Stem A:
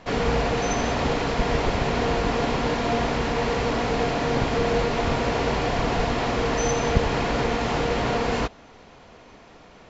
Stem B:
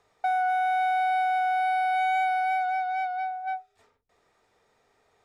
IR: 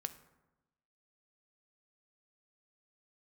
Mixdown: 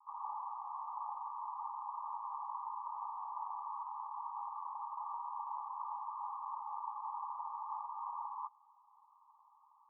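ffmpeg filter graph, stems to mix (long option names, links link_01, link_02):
-filter_complex "[0:a]volume=-9dB[link_01];[1:a]acompressor=threshold=-34dB:ratio=6,volume=1.5dB,asplit=3[link_02][link_03][link_04];[link_02]atrim=end=1.23,asetpts=PTS-STARTPTS,afade=type=out:start_time=1.226:duration=0.004:curve=hsin[link_05];[link_03]atrim=start=1.23:end=3.01,asetpts=PTS-STARTPTS,volume=0[link_06];[link_04]atrim=start=3.01,asetpts=PTS-STARTPTS,afade=type=in:duration=0.004:curve=hsin[link_07];[link_05][link_06][link_07]concat=n=3:v=0:a=1[link_08];[link_01][link_08]amix=inputs=2:normalize=0,asuperpass=centerf=1000:order=20:qfactor=2.4"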